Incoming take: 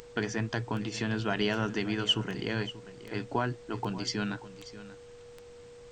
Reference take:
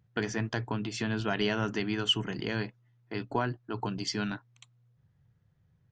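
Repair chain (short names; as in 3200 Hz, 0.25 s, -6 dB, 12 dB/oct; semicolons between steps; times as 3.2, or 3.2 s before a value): de-click; notch 480 Hz, Q 30; denoiser 17 dB, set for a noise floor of -50 dBFS; inverse comb 0.585 s -15.5 dB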